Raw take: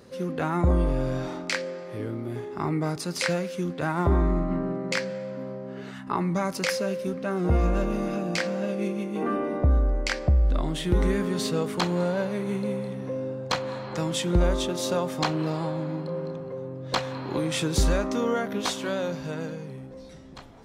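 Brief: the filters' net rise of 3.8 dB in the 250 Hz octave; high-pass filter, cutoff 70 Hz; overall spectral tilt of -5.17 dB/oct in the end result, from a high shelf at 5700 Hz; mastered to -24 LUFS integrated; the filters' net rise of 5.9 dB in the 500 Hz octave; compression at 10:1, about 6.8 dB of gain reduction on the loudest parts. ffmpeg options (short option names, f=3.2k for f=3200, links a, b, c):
-af "highpass=70,equalizer=f=250:t=o:g=3.5,equalizer=f=500:t=o:g=6,highshelf=f=5.7k:g=7,acompressor=threshold=-22dB:ratio=10,volume=3.5dB"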